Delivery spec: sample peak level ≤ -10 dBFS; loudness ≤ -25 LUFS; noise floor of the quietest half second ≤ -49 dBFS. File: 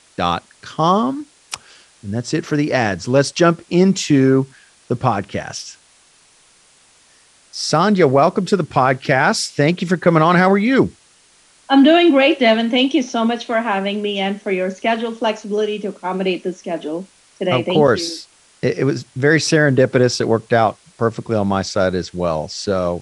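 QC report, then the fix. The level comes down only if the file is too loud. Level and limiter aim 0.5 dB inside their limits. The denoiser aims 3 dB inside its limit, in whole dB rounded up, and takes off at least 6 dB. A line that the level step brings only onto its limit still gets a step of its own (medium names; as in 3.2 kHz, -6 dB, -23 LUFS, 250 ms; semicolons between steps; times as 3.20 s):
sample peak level -2.0 dBFS: fail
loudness -17.0 LUFS: fail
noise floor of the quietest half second -52 dBFS: pass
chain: trim -8.5 dB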